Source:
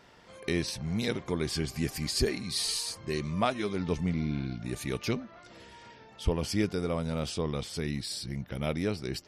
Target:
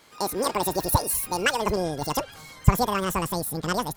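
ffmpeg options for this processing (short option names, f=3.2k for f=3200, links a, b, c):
-af "asetrate=103194,aresample=44100,dynaudnorm=f=110:g=5:m=5dB,asubboost=boost=10:cutoff=110,volume=1.5dB"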